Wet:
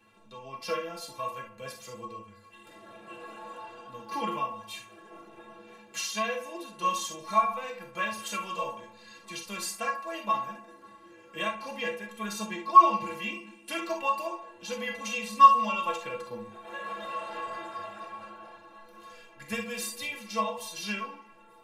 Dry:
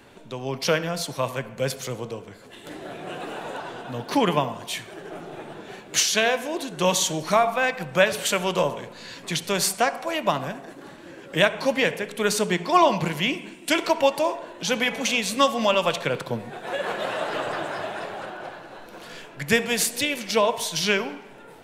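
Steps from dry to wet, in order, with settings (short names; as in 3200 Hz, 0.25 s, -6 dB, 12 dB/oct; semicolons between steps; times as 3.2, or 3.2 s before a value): metallic resonator 100 Hz, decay 0.33 s, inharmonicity 0.03; small resonant body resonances 1100/2700 Hz, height 12 dB, ringing for 45 ms; reverb, pre-delay 3 ms, DRR 3 dB; gain -4 dB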